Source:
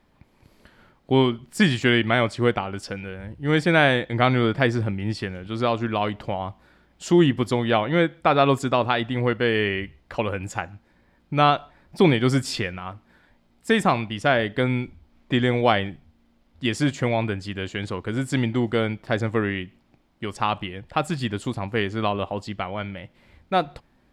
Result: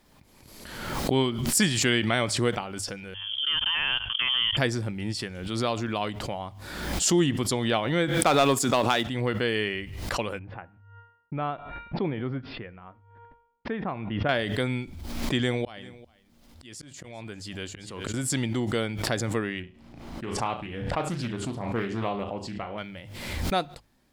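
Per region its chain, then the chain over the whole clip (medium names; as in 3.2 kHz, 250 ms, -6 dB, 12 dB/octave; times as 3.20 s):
3.14–4.57 s: frequency inversion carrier 3.3 kHz + level held to a coarse grid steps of 23 dB
8.18–9.07 s: high-pass 150 Hz + waveshaping leveller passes 1
10.39–14.29 s: gate -53 dBFS, range -58 dB + Gaussian low-pass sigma 4 samples + feedback comb 470 Hz, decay 0.72 s, mix 50%
15.38–18.14 s: slow attack 658 ms + delay 396 ms -20 dB
19.60–22.78 s: low-pass 1.6 kHz 6 dB/octave + flutter echo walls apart 6 m, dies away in 0.29 s + loudspeaker Doppler distortion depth 0.4 ms
whole clip: tone controls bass 0 dB, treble +13 dB; hum notches 50/100 Hz; swell ahead of each attack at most 43 dB/s; trim -6 dB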